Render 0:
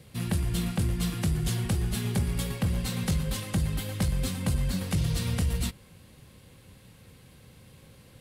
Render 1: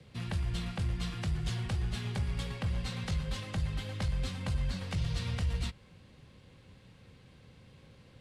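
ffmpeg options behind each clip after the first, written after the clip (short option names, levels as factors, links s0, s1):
-filter_complex "[0:a]acrossover=split=140|510|2700[s0][s1][s2][s3];[s1]acompressor=threshold=0.00794:ratio=6[s4];[s0][s4][s2][s3]amix=inputs=4:normalize=0,lowpass=5100,volume=0.668"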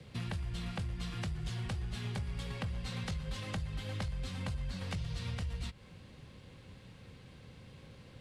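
-af "acompressor=threshold=0.0126:ratio=6,volume=1.41"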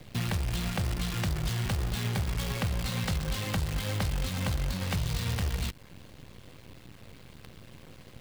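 -af "acrusher=bits=8:dc=4:mix=0:aa=0.000001,volume=2.37"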